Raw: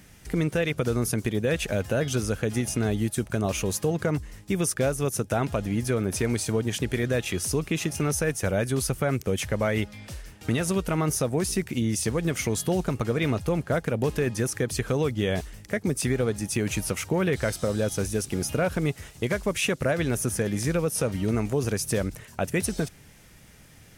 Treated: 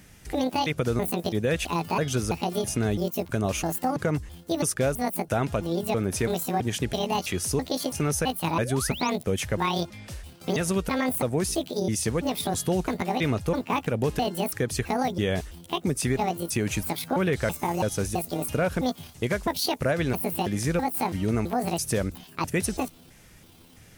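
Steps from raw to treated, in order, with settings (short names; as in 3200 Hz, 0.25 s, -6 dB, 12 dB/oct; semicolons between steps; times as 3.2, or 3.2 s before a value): trilling pitch shifter +9 st, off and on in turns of 0.33 s; painted sound rise, 8.54–9.1, 240–7000 Hz -38 dBFS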